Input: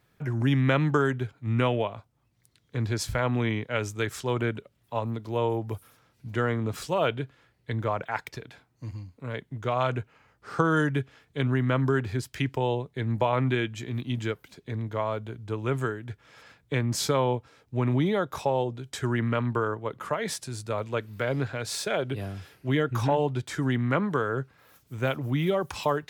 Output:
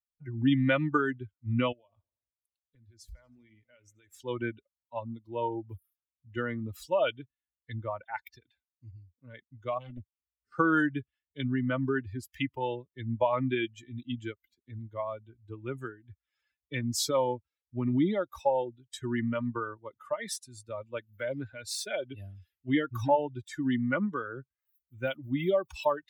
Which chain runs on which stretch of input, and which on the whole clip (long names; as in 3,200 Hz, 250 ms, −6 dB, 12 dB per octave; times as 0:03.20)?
0:01.72–0:04.20: downward compressor 5 to 1, threshold −39 dBFS + feedback echo with a swinging delay time 80 ms, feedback 76%, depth 65 cents, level −15 dB
0:09.78–0:10.52: drawn EQ curve 280 Hz 0 dB, 930 Hz −18 dB, 2,200 Hz −6 dB, 3,700 Hz −6 dB, 7,800 Hz 0 dB + highs frequency-modulated by the lows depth 0.78 ms
whole clip: spectral dynamics exaggerated over time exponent 2; comb filter 3.4 ms, depth 53%; level +1 dB